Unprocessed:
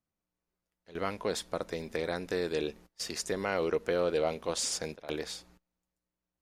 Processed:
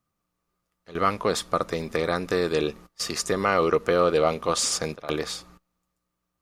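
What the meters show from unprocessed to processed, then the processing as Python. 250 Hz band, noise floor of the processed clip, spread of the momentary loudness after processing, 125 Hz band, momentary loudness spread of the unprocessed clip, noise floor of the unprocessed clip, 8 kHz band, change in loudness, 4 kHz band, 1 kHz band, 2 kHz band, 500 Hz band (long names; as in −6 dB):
+8.0 dB, −81 dBFS, 9 LU, +9.5 dB, 9 LU, below −85 dBFS, +7.5 dB, +8.5 dB, +7.5 dB, +12.5 dB, +8.0 dB, +7.5 dB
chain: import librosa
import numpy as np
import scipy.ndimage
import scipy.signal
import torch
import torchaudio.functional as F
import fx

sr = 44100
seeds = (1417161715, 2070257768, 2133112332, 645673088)

y = fx.peak_eq(x, sr, hz=130.0, db=4.5, octaves=0.69)
y = fx.small_body(y, sr, hz=(1200.0,), ring_ms=45, db=16)
y = y * 10.0 ** (7.5 / 20.0)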